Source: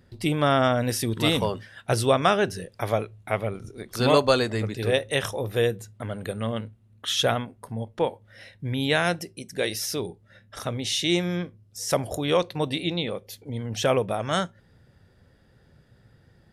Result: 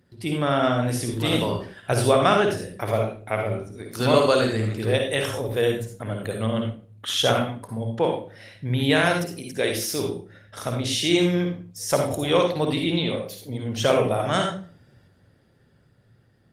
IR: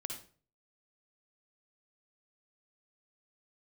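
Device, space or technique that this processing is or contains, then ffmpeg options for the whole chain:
far-field microphone of a smart speaker: -filter_complex "[0:a]asplit=3[a][b][c];[a]afade=t=out:st=0.71:d=0.02[d];[b]bandreject=f=223.8:t=h:w=4,bandreject=f=447.6:t=h:w=4,bandreject=f=671.4:t=h:w=4,bandreject=f=895.2:t=h:w=4,bandreject=f=1.119k:t=h:w=4,bandreject=f=1.3428k:t=h:w=4,bandreject=f=1.5666k:t=h:w=4,bandreject=f=1.7904k:t=h:w=4,bandreject=f=2.0142k:t=h:w=4,bandreject=f=2.238k:t=h:w=4,bandreject=f=2.4618k:t=h:w=4,afade=t=in:st=0.71:d=0.02,afade=t=out:st=1.37:d=0.02[e];[c]afade=t=in:st=1.37:d=0.02[f];[d][e][f]amix=inputs=3:normalize=0[g];[1:a]atrim=start_sample=2205[h];[g][h]afir=irnorm=-1:irlink=0,highpass=90,dynaudnorm=f=140:g=21:m=5dB" -ar 48000 -c:a libopus -b:a 24k

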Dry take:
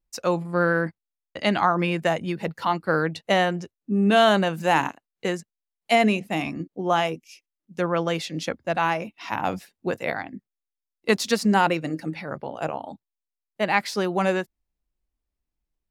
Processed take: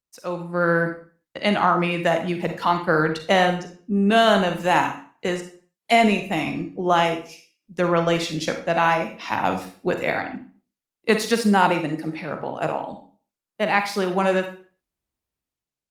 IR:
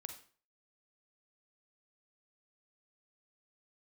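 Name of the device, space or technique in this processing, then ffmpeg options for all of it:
far-field microphone of a smart speaker: -filter_complex "[1:a]atrim=start_sample=2205[a];[0:a][a]afir=irnorm=-1:irlink=0,highpass=93,dynaudnorm=f=130:g=9:m=11dB,volume=-2dB" -ar 48000 -c:a libopus -b:a 32k

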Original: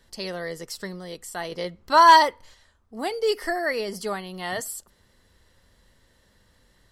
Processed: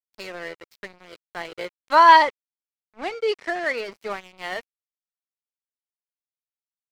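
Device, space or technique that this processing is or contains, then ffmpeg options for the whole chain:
pocket radio on a weak battery: -filter_complex "[0:a]highpass=280,lowpass=3.5k,aeval=exprs='sgn(val(0))*max(abs(val(0))-0.0133,0)':c=same,equalizer=f=2.3k:t=o:w=0.39:g=7,asettb=1/sr,asplit=3[a][b][c];[a]atrim=end=1.954[d];[b]atrim=start=1.95:end=3.75,asetpts=PTS-STARTPTS,afade=t=in:d=0.004:c=qsin,afade=t=out:st=1.796:d=0.004:c=qsin,lowpass=8.9k[e];[c]atrim=start=3.746[f];[d][e]acrossfade=d=0.004:c1=hsin:c2=qsin[g];[g][f]acrossfade=d=0.004:c1=qsin:c2=hsin,volume=1.5dB"

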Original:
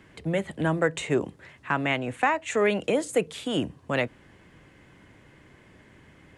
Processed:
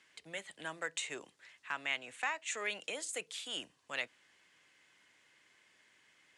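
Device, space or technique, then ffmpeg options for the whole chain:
piezo pickup straight into a mixer: -af "lowpass=6.4k,aderivative,volume=2.5dB"

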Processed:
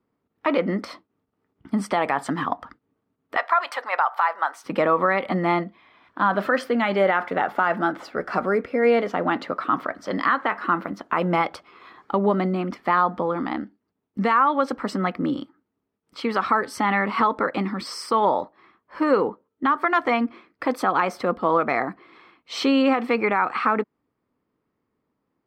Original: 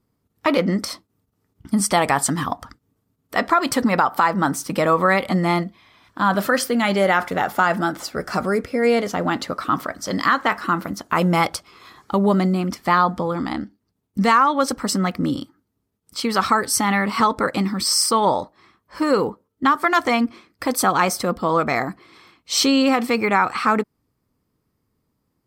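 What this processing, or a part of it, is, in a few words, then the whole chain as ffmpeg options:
DJ mixer with the lows and highs turned down: -filter_complex "[0:a]asettb=1/sr,asplit=3[a][b][c];[a]atrim=end=3.364[d];[b]atrim=start=3.36:end=4.64,asetpts=PTS-STARTPTS,afade=t=in:d=0.004:c=qsin,afade=t=out:st=1.276:d=0.004:c=qsin,highpass=f=670:w=0.5412,highpass=f=670:w=1.3066[e];[c]atrim=start=4.636[f];[d][e]acrossfade=d=0.004:c1=hsin:c2=qsin[g];[g][f]acrossfade=d=0.004:c1=qsin:c2=hsin,acrossover=split=210 3200:gain=0.224 1 0.0794[h][i][j];[h][i][j]amix=inputs=3:normalize=0,alimiter=limit=-9dB:level=0:latency=1:release=150"

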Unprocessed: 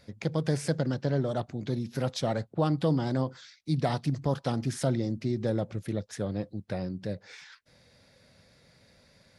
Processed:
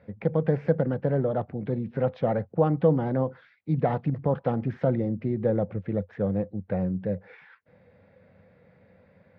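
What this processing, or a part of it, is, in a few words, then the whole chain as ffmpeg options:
bass cabinet: -af "highpass=68,equalizer=f=91:t=q:w=4:g=7,equalizer=f=190:t=q:w=4:g=8,equalizer=f=490:t=q:w=4:g=9,equalizer=f=790:t=q:w=4:g=4,lowpass=f=2.3k:w=0.5412,lowpass=f=2.3k:w=1.3066"

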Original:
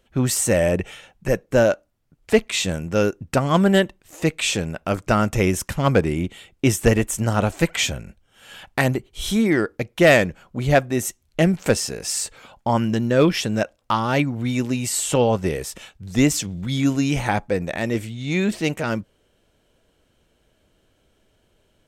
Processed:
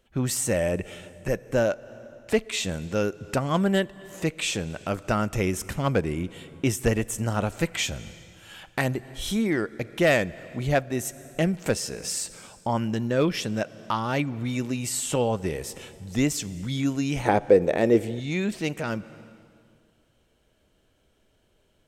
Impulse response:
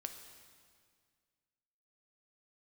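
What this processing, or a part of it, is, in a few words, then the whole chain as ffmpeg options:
compressed reverb return: -filter_complex "[0:a]asplit=2[a][b];[1:a]atrim=start_sample=2205[c];[b][c]afir=irnorm=-1:irlink=0,acompressor=threshold=-29dB:ratio=10,volume=-0.5dB[d];[a][d]amix=inputs=2:normalize=0,asettb=1/sr,asplit=3[e][f][g];[e]atrim=end=17.254[h];[f]atrim=start=17.25:end=18.2,asetpts=PTS-STARTPTS,afade=t=in:d=0.004:c=qsin,afade=t=out:st=0.946:d=0.004:c=qsin,equalizer=f=430:t=o:w=1.5:g=14[i];[g]atrim=start=18.196[j];[h][i]acrossfade=d=0.004:c1=hsin:c2=qsin[k];[k][j]acrossfade=d=0.004:c1=qsin:c2=hsin,volume=-7.5dB"

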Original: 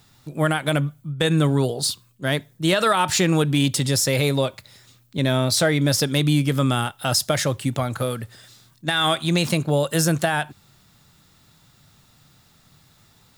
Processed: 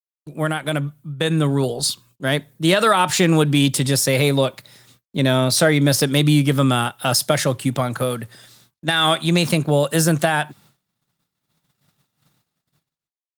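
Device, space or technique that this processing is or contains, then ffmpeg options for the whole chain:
video call: -af "highpass=f=120:w=0.5412,highpass=f=120:w=1.3066,dynaudnorm=f=690:g=5:m=13.5dB,agate=range=-53dB:threshold=-48dB:ratio=16:detection=peak,volume=-1dB" -ar 48000 -c:a libopus -b:a 32k

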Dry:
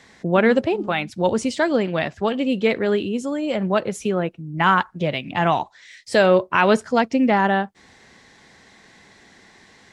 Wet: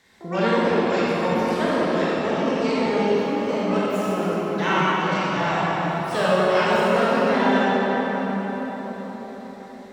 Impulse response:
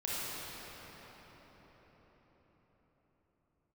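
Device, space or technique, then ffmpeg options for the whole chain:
shimmer-style reverb: -filter_complex "[0:a]asettb=1/sr,asplit=3[a][b][c];[a]atrim=end=1.324[d];[b]atrim=start=1.32:end=3.38,asetpts=PTS-STARTPTS,afade=t=in:d=0.004:c=qsin,afade=t=out:st=2.056:d=0.004:c=qsin,lowpass=f=5.4k:w=0.5412,lowpass=f=5.4k:w=1.3066[e];[c]atrim=start=3.376[f];[d][e]acrossfade=d=0.004:c1=hsin:c2=qsin[g];[g][f]acrossfade=d=0.004:c1=qsin:c2=hsin,asplit=2[h][i];[i]asetrate=88200,aresample=44100,atempo=0.5,volume=-7dB[j];[h][j]amix=inputs=2:normalize=0[k];[1:a]atrim=start_sample=2205[l];[k][l]afir=irnorm=-1:irlink=0,volume=-8dB"

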